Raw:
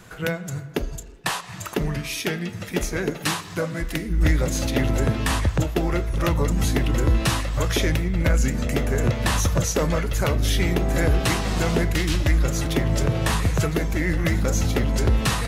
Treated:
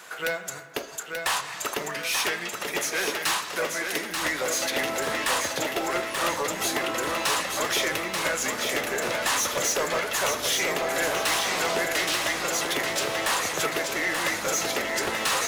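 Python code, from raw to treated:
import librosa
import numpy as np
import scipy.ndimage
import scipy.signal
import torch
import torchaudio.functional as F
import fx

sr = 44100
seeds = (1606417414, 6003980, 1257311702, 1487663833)

p1 = scipy.signal.sosfilt(scipy.signal.butter(2, 640.0, 'highpass', fs=sr, output='sos'), x)
p2 = fx.quant_float(p1, sr, bits=2)
p3 = p1 + (p2 * librosa.db_to_amplitude(-7.5))
p4 = 10.0 ** (-22.5 / 20.0) * np.tanh(p3 / 10.0 ** (-22.5 / 20.0))
p5 = fx.echo_feedback(p4, sr, ms=884, feedback_pct=45, wet_db=-5.0)
y = p5 * librosa.db_to_amplitude(2.0)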